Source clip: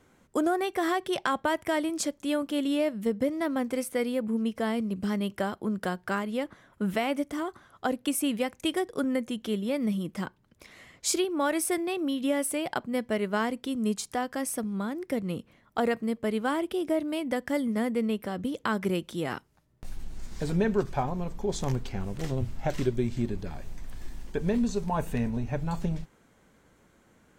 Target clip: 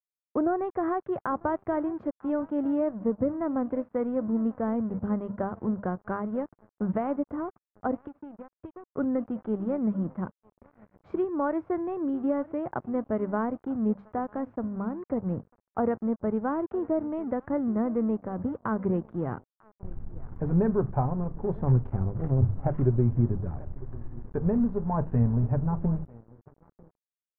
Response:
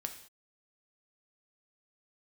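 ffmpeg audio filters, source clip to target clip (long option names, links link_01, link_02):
-filter_complex "[0:a]bandreject=frequency=50:width_type=h:width=6,bandreject=frequency=100:width_type=h:width=6,bandreject=frequency=150:width_type=h:width=6,bandreject=frequency=200:width_type=h:width=6,aecho=1:1:947:0.1,asettb=1/sr,asplit=3[link_01][link_02][link_03];[link_01]atrim=end=8.024[link_04];[link_02]atrim=start=8.02:end=8.95,asetpts=PTS-STARTPTS,afade=type=in:duration=0.004:curve=qsin,afade=type=out:start_time=0.926:duration=0.004:curve=qsin,acompressor=threshold=-38dB:ratio=6[link_05];[link_03]atrim=start=8.946[link_06];[link_04][link_05]acrossfade=duration=0.004:curve1=hsin:curve2=qsin[link_07];[link_07][link_06]acrossfade=duration=0.004:curve1=qsin:curve2=hsin,equalizer=frequency=100:width=1.2:gain=13.5,aeval=exprs='sgn(val(0))*max(abs(val(0))-0.00708,0)':channel_layout=same,lowpass=frequency=1300:width=0.5412,lowpass=frequency=1300:width=1.3066"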